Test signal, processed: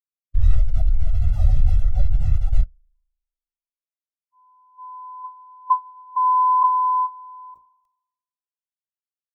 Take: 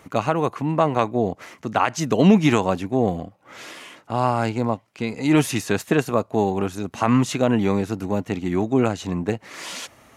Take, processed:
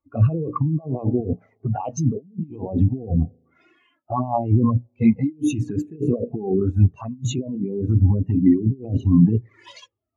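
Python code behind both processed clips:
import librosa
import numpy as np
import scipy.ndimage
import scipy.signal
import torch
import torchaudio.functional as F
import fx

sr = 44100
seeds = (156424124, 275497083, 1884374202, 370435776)

p1 = fx.spec_quant(x, sr, step_db=15)
p2 = fx.hum_notches(p1, sr, base_hz=60, count=10)
p3 = fx.level_steps(p2, sr, step_db=17)
p4 = p2 + (p3 * librosa.db_to_amplitude(-2.0))
p5 = fx.peak_eq(p4, sr, hz=200.0, db=-3.5, octaves=0.27)
p6 = fx.env_flanger(p5, sr, rest_ms=3.6, full_db=-15.0)
p7 = fx.low_shelf(p6, sr, hz=69.0, db=6.5)
p8 = fx.rev_spring(p7, sr, rt60_s=2.3, pass_ms=(37,), chirp_ms=60, drr_db=20.0)
p9 = fx.mod_noise(p8, sr, seeds[0], snr_db=18)
p10 = fx.over_compress(p9, sr, threshold_db=-27.0, ratio=-1.0)
p11 = fx.spectral_expand(p10, sr, expansion=2.5)
y = p11 * librosa.db_to_amplitude(4.5)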